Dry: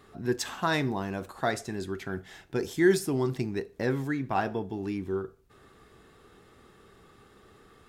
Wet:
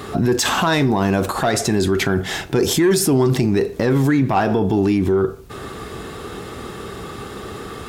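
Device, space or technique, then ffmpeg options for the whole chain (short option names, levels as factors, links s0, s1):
mastering chain: -af "highpass=42,equalizer=f=1800:t=o:w=0.72:g=-3,acompressor=threshold=0.0178:ratio=1.5,asoftclip=type=tanh:threshold=0.075,alimiter=level_in=47.3:limit=0.891:release=50:level=0:latency=1,volume=0.376"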